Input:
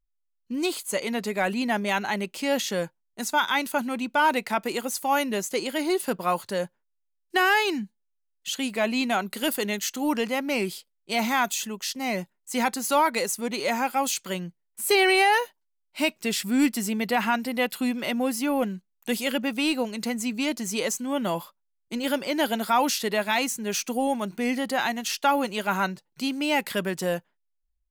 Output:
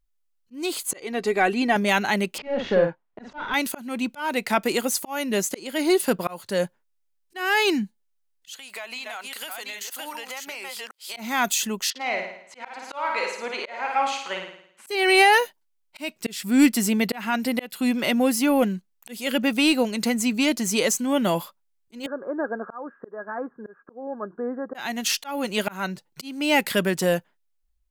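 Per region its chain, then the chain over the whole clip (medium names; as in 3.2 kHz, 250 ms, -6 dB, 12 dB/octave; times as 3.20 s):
0.91–1.76 s: low-pass 11 kHz + treble shelf 3.5 kHz -7.5 dB + comb 2.6 ms, depth 54%
2.38–3.54 s: overdrive pedal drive 20 dB, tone 2.8 kHz, clips at -11.5 dBFS + tape spacing loss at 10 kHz 43 dB + doubling 48 ms -6 dB
8.57–11.17 s: chunks repeated in reverse 390 ms, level -5 dB + high-pass 860 Hz + compression 10:1, threshold -36 dBFS
11.90–14.87 s: band-pass 670–2600 Hz + flutter echo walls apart 9.3 m, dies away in 0.66 s
22.06–24.75 s: rippled Chebyshev low-pass 1.7 kHz, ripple 9 dB + bass shelf 230 Hz -11.5 dB
whole clip: dynamic bell 970 Hz, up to -3 dB, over -38 dBFS, Q 1.9; slow attack 344 ms; trim +5.5 dB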